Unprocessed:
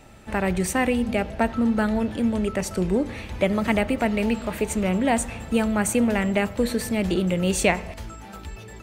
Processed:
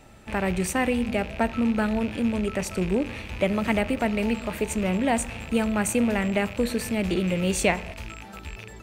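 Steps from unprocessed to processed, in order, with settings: rattle on loud lows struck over -39 dBFS, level -25 dBFS; trim -2 dB

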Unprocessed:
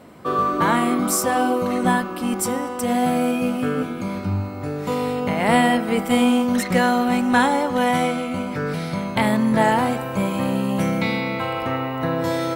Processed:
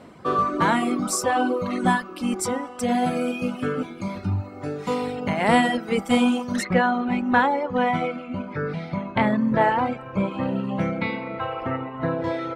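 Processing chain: reverb removal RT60 1.4 s; low-pass 8 kHz 12 dB/octave, from 6.65 s 2.5 kHz

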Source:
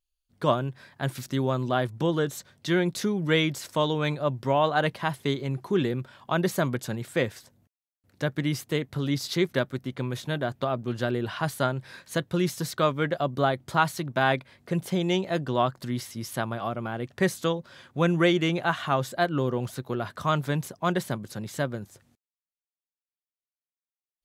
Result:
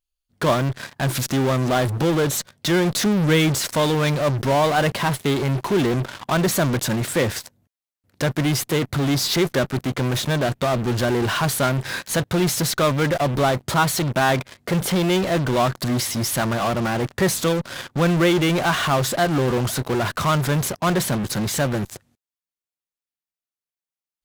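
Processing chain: 3.06–3.60 s: bass shelf 230 Hz +6 dB; in parallel at -10 dB: fuzz box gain 46 dB, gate -50 dBFS

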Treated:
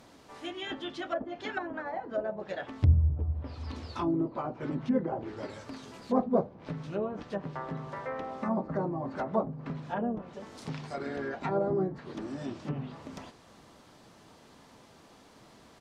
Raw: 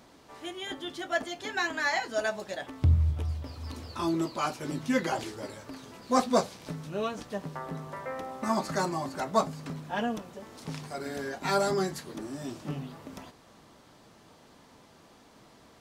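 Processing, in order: low-pass that closes with the level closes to 640 Hz, closed at -27 dBFS; harmony voices -3 st -10 dB

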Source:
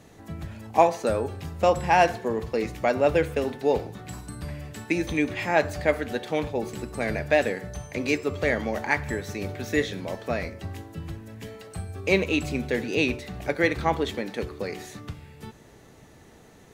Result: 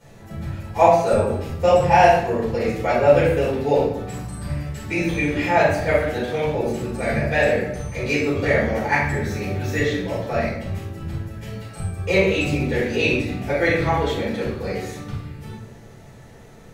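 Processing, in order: simulated room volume 180 m³, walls mixed, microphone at 4.6 m; trim -8.5 dB

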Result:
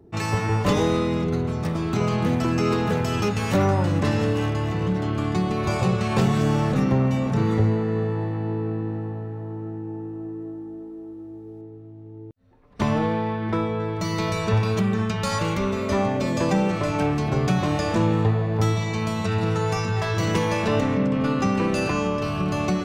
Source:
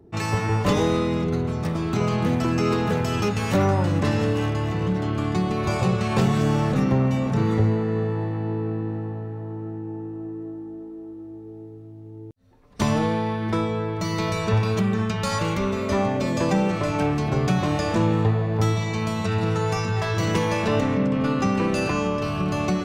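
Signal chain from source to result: 11.61–13.80 s: tone controls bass -1 dB, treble -11 dB

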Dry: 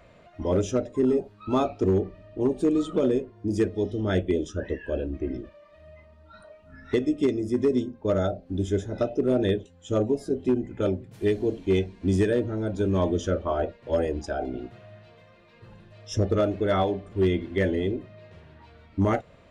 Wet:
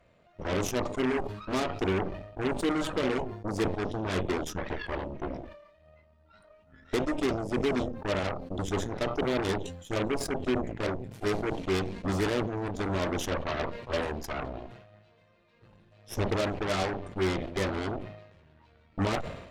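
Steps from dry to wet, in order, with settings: Chebyshev shaper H 3 -18 dB, 8 -12 dB, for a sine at -14.5 dBFS; decay stretcher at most 64 dB/s; trim -6 dB

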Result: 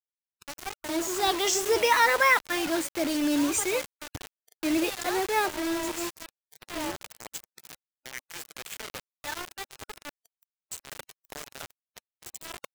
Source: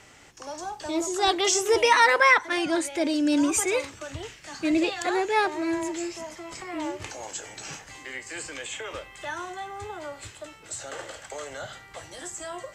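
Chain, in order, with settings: bit crusher 5-bit; spectral noise reduction 17 dB; trim -3 dB

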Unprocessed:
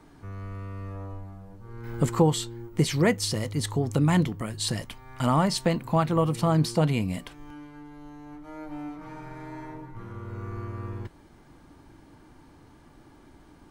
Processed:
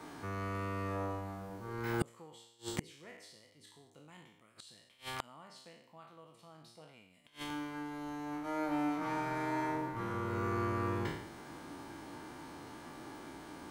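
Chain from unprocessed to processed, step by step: spectral sustain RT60 0.78 s; high-pass 370 Hz 6 dB/octave; dynamic bell 2.9 kHz, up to +5 dB, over -45 dBFS, Q 1.6; inverted gate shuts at -24 dBFS, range -38 dB; trim +6.5 dB

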